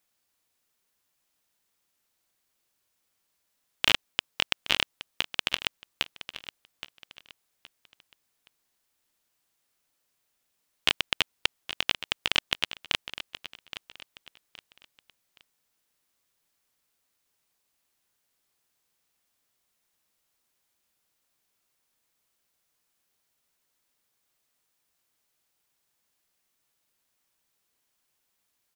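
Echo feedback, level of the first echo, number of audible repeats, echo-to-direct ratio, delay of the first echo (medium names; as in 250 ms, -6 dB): 32%, -13.0 dB, 3, -12.5 dB, 820 ms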